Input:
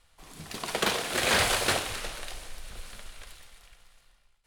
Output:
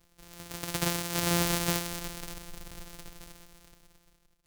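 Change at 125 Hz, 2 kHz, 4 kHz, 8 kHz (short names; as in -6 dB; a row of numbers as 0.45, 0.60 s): +5.5, -8.0, -5.5, -1.5 dB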